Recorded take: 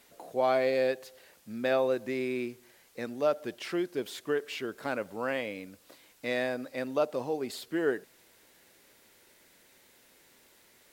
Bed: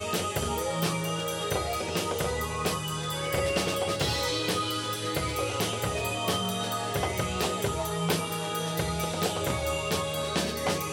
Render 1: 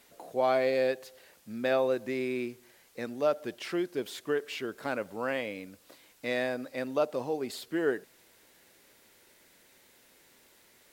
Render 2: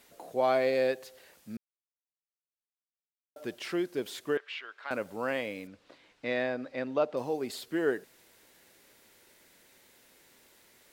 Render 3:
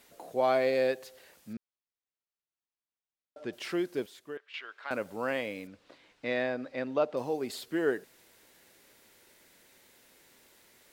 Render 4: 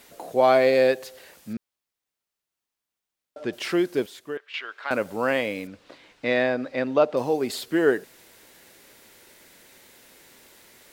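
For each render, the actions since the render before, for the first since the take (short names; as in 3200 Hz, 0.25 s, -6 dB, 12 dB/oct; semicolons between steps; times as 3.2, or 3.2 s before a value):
nothing audible
1.57–3.36 mute; 4.37–4.91 Butterworth band-pass 1900 Hz, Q 0.71; 5.67–7.17 LPF 3800 Hz
1.53–3.53 air absorption 100 m; 4.06–4.54 gain -11 dB
gain +8.5 dB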